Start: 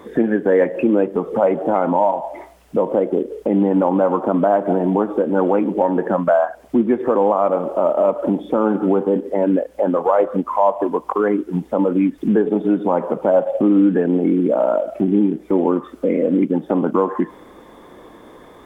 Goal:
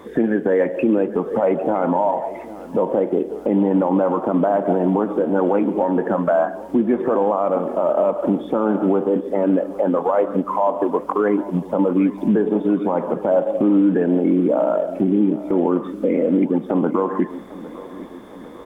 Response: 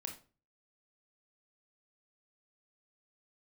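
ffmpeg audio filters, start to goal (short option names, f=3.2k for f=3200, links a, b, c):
-filter_complex "[0:a]alimiter=limit=-9dB:level=0:latency=1:release=23,aecho=1:1:803|1606|2409|3212|4015:0.133|0.0787|0.0464|0.0274|0.0162,asplit=2[a][b];[1:a]atrim=start_sample=2205,adelay=138[c];[b][c]afir=irnorm=-1:irlink=0,volume=-16.5dB[d];[a][d]amix=inputs=2:normalize=0"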